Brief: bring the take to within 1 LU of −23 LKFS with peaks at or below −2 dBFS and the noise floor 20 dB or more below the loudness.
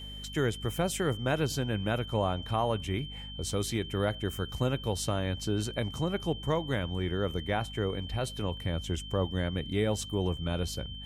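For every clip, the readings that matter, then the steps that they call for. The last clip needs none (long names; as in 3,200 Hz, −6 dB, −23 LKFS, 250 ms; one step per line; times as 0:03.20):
mains hum 50 Hz; hum harmonics up to 250 Hz; level of the hum −41 dBFS; interfering tone 3,100 Hz; level of the tone −43 dBFS; integrated loudness −32.0 LKFS; sample peak −15.5 dBFS; target loudness −23.0 LKFS
→ hum removal 50 Hz, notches 5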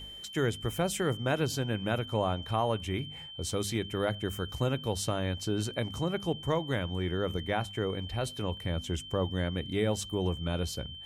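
mains hum none found; interfering tone 3,100 Hz; level of the tone −43 dBFS
→ notch filter 3,100 Hz, Q 30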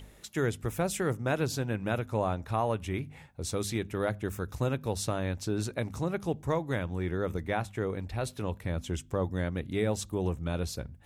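interfering tone none found; integrated loudness −32.5 LKFS; sample peak −15.5 dBFS; target loudness −23.0 LKFS
→ level +9.5 dB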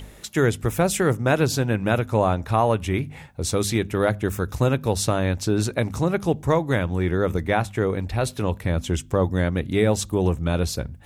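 integrated loudness −23.0 LKFS; sample peak −6.0 dBFS; background noise floor −44 dBFS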